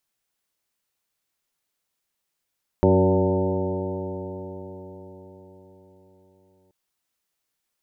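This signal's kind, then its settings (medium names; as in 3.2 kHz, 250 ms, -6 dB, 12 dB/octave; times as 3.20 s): stretched partials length 3.88 s, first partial 92.2 Hz, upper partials -0.5/-3/2/-3.5/-1/-13.5/-13.5/-7 dB, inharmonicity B 0.0021, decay 4.98 s, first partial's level -20 dB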